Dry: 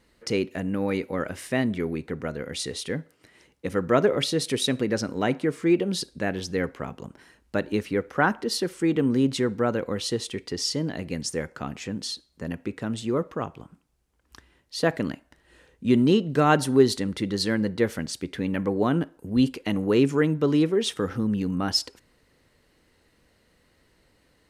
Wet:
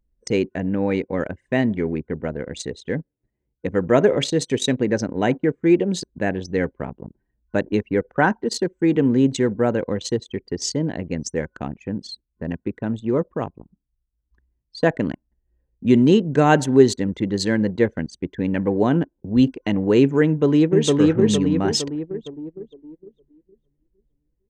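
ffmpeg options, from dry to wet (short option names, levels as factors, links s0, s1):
-filter_complex "[0:a]asplit=2[s0][s1];[s1]afade=t=in:st=20.26:d=0.01,afade=t=out:st=20.91:d=0.01,aecho=0:1:460|920|1380|1840|2300|2760|3220|3680:0.891251|0.490188|0.269603|0.148282|0.081555|0.0448553|0.0246704|0.0135687[s2];[s0][s2]amix=inputs=2:normalize=0,aemphasis=mode=reproduction:type=50kf,anlmdn=6.31,superequalizer=10b=0.501:15b=3.55,volume=1.78"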